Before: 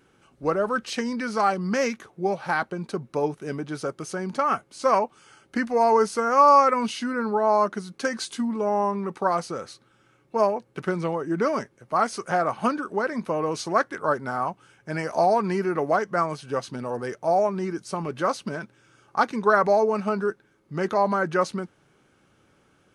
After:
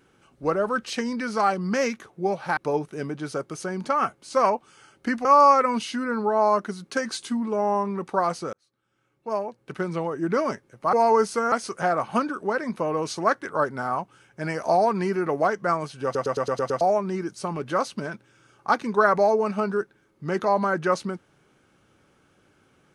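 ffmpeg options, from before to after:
-filter_complex "[0:a]asplit=13[s0][s1][s2][s3][s4][s5][s6][s7][s8][s9][s10][s11][s12];[s0]atrim=end=2.572[s13];[s1]atrim=start=3.058:end=5.742[s14];[s2]atrim=start=6.328:end=9.61,asetpts=PTS-STARTPTS,afade=t=out:st=3.278:d=0.004:c=hsin[s15];[s3]atrim=start=9.61:end=12.012,asetpts=PTS-STARTPTS,afade=t=in:d=1.67[s16];[s4]atrim=start=5.738:end=6.332[s17];[s5]atrim=start=12.008:end=16.642[s18];[s6]atrim=start=16.528:end=16.642[s19];[s7]atrim=start=16.528:end=16.642[s20];[s8]atrim=start=16.528:end=16.642[s21];[s9]atrim=start=16.528:end=16.642[s22];[s10]atrim=start=16.528:end=16.642[s23];[s11]atrim=start=16.528:end=16.642[s24];[s12]atrim=start=17.298[s25];[s13][s14]acrossfade=d=0.004:c1=hsin:c2=hsin[s26];[s15][s16]concat=n=2:v=0:a=1[s27];[s26][s27]acrossfade=d=0.004:c1=hsin:c2=hsin[s28];[s28][s17]acrossfade=d=0.004:c1=hsin:c2=hsin[s29];[s29][s18]acrossfade=d=0.004:c1=hsin:c2=hsin[s30];[s30][s19]acrossfade=d=0.004:c1=hsin:c2=hsin[s31];[s31][s20]acrossfade=d=0.004:c1=hsin:c2=hsin[s32];[s32][s21]acrossfade=d=0.004:c1=hsin:c2=hsin[s33];[s33][s22]acrossfade=d=0.004:c1=hsin:c2=hsin[s34];[s34][s23]acrossfade=d=0.004:c1=hsin:c2=hsin[s35];[s35][s24]acrossfade=d=0.004:c1=hsin:c2=hsin[s36];[s36][s25]acrossfade=d=0.004:c1=hsin:c2=hsin"

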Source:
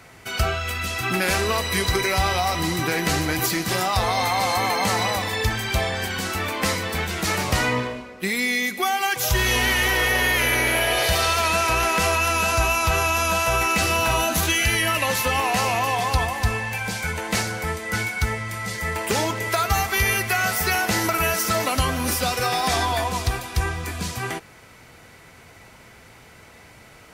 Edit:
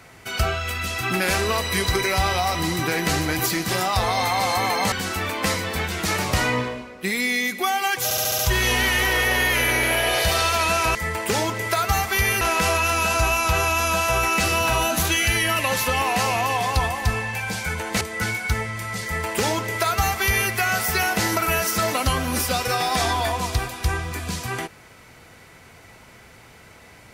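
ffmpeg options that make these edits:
-filter_complex "[0:a]asplit=10[s0][s1][s2][s3][s4][s5][s6][s7][s8][s9];[s0]atrim=end=4.922[s10];[s1]atrim=start=6.108:end=9.302[s11];[s2]atrim=start=9.228:end=9.302[s12];[s3]atrim=start=9.228:end=9.302[s13];[s4]atrim=start=9.228:end=9.302[s14];[s5]atrim=start=9.228:end=9.302[s15];[s6]atrim=start=9.228:end=11.792[s16];[s7]atrim=start=18.758:end=20.222[s17];[s8]atrim=start=11.788:end=17.392[s18];[s9]atrim=start=17.728[s19];[s10][s11]acrossfade=d=0.004:c1=hsin:c2=hsin[s20];[s20][s12]acrossfade=d=0.004:c1=hsin:c2=hsin[s21];[s21][s13]acrossfade=d=0.004:c1=hsin:c2=hsin[s22];[s22][s14]acrossfade=d=0.004:c1=hsin:c2=hsin[s23];[s23][s15]acrossfade=d=0.004:c1=hsin:c2=hsin[s24];[s24][s16]acrossfade=d=0.004:c1=hsin:c2=hsin[s25];[s25][s17]acrossfade=d=0.004:c1=hsin:c2=hsin[s26];[s26][s18]acrossfade=d=0.004:c1=hsin:c2=hsin[s27];[s27][s19]acrossfade=d=0.004:c1=hsin:c2=hsin"

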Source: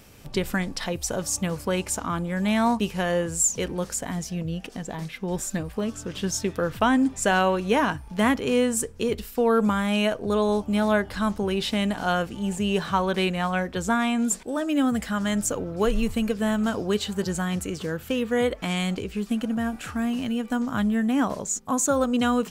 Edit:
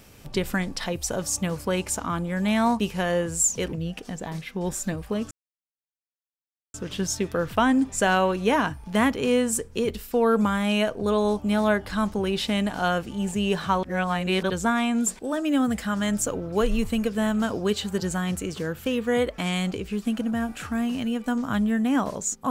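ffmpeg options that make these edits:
-filter_complex "[0:a]asplit=5[s0][s1][s2][s3][s4];[s0]atrim=end=3.732[s5];[s1]atrim=start=4.398:end=5.98,asetpts=PTS-STARTPTS,afade=t=out:st=1.578:d=0.004:c=hsin,apad=pad_dur=1.43[s6];[s2]atrim=start=5.98:end=13.072,asetpts=PTS-STARTPTS,afade=t=in:d=0.004:c=hsin[s7];[s3]atrim=start=13.068:end=13.742,asetpts=PTS-STARTPTS,areverse[s8];[s4]atrim=start=13.738[s9];[s6][s7]concat=n=2:v=0:a=1[s10];[s5][s10]acrossfade=d=0.004:c1=hsin:c2=hsin[s11];[s11][s8]acrossfade=d=0.004:c1=hsin:c2=hsin[s12];[s12][s9]acrossfade=d=0.004:c1=hsin:c2=hsin"

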